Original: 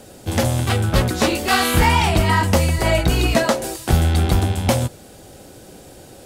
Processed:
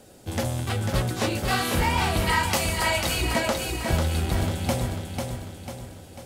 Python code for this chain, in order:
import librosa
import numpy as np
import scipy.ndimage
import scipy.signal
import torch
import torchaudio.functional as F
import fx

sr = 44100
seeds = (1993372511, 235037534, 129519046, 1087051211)

y = fx.tilt_shelf(x, sr, db=-7.5, hz=750.0, at=(2.27, 3.21))
y = fx.echo_feedback(y, sr, ms=495, feedback_pct=48, wet_db=-5)
y = y * librosa.db_to_amplitude(-8.5)